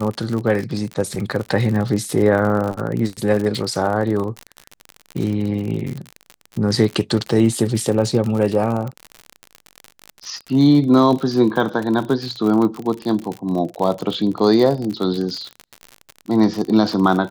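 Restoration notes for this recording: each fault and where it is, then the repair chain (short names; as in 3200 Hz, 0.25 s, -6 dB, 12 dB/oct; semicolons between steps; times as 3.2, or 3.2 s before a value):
crackle 53/s -23 dBFS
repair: de-click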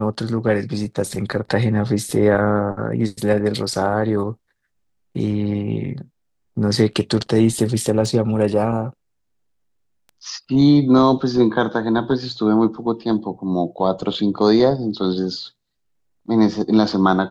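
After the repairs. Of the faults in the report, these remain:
none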